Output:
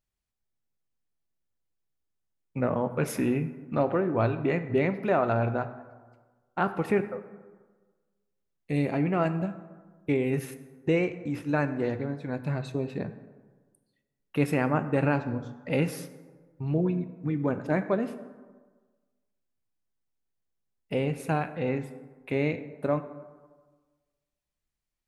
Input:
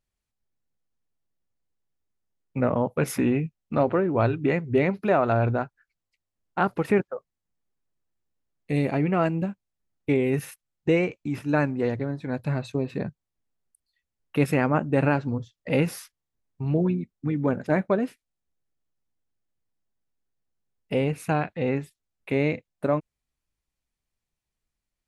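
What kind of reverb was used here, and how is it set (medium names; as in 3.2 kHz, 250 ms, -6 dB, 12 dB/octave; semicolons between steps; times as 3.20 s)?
plate-style reverb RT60 1.4 s, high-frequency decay 0.5×, DRR 10 dB; trim -3.5 dB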